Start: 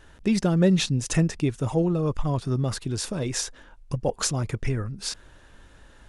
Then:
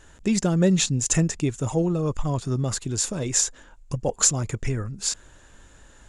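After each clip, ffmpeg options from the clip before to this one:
-af "equalizer=f=7.1k:w=3.7:g=14"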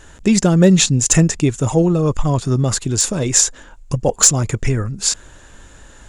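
-af "aeval=exprs='0.335*(abs(mod(val(0)/0.335+3,4)-2)-1)':c=same,volume=8.5dB"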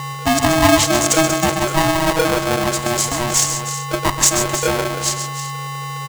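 -filter_complex "[0:a]aeval=exprs='val(0)+0.0891*sin(2*PI*620*n/s)':c=same,asplit=2[a][b];[b]aecho=0:1:52|128|141|315|379:0.133|0.335|0.251|0.266|0.168[c];[a][c]amix=inputs=2:normalize=0,aeval=exprs='val(0)*sgn(sin(2*PI*480*n/s))':c=same,volume=-3dB"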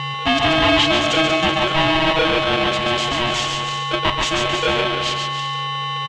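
-af "asoftclip=type=tanh:threshold=-13.5dB,lowpass=f=3.1k:t=q:w=3.7,aecho=1:1:140:0.422"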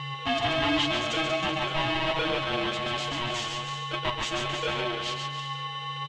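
-af "flanger=delay=6.4:depth=2.6:regen=40:speed=1.3:shape=triangular,volume=-6.5dB"

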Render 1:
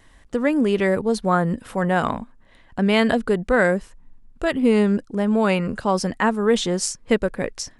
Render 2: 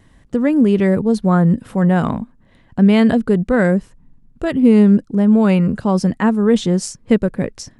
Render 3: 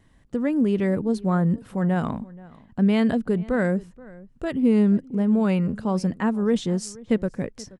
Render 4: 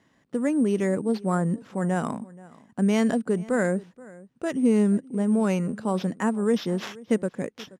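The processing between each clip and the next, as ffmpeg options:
-af "equalizer=f=150:w=0.5:g=13,volume=-2.5dB"
-filter_complex "[0:a]asplit=2[a][b];[b]adelay=478.1,volume=-21dB,highshelf=f=4k:g=-10.8[c];[a][c]amix=inputs=2:normalize=0,volume=-8dB"
-af "acrusher=samples=5:mix=1:aa=0.000001,highpass=200,lowpass=7.6k"

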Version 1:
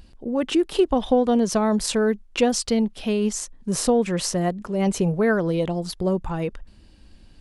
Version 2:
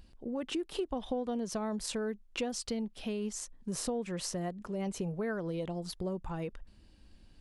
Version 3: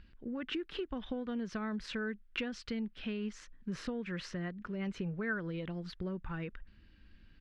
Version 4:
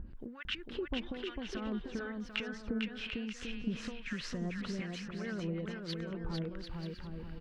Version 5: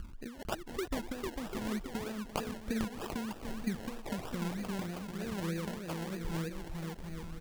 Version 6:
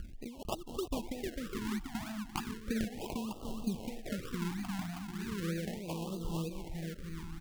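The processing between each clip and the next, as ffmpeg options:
-af "acompressor=threshold=-26dB:ratio=2.5,volume=-8.5dB"
-af "firequalizer=gain_entry='entry(220,0);entry(720,-10);entry(1500,8);entry(9000,-26)':delay=0.05:min_phase=1,volume=-1dB"
-filter_complex "[0:a]acompressor=threshold=-46dB:ratio=6,acrossover=split=1000[a][b];[a]aeval=exprs='val(0)*(1-1/2+1/2*cos(2*PI*1.1*n/s))':c=same[c];[b]aeval=exprs='val(0)*(1-1/2-1/2*cos(2*PI*1.1*n/s))':c=same[d];[c][d]amix=inputs=2:normalize=0,asplit=2[e][f];[f]aecho=0:1:450|742.5|932.6|1056|1137:0.631|0.398|0.251|0.158|0.1[g];[e][g]amix=inputs=2:normalize=0,volume=12.5dB"
-af "acrusher=samples=29:mix=1:aa=0.000001:lfo=1:lforange=17.4:lforate=3.2,volume=1dB"
-af "afftfilt=real='re*(1-between(b*sr/1024,450*pow(1900/450,0.5+0.5*sin(2*PI*0.36*pts/sr))/1.41,450*pow(1900/450,0.5+0.5*sin(2*PI*0.36*pts/sr))*1.41))':imag='im*(1-between(b*sr/1024,450*pow(1900/450,0.5+0.5*sin(2*PI*0.36*pts/sr))/1.41,450*pow(1900/450,0.5+0.5*sin(2*PI*0.36*pts/sr))*1.41))':win_size=1024:overlap=0.75"

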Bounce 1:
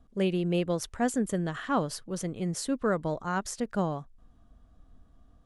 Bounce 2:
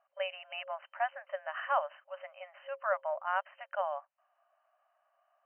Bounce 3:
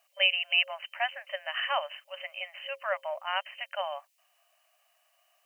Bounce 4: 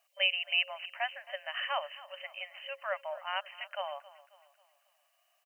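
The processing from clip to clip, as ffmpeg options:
-af "afftfilt=real='re*between(b*sr/4096,540,3100)':imag='im*between(b*sr/4096,540,3100)':win_size=4096:overlap=0.75"
-af "aexciter=amount=10.9:drive=3.2:freq=2.1k"
-af "aecho=1:1:270|540|810|1080:0.119|0.0523|0.023|0.0101,volume=-4dB"

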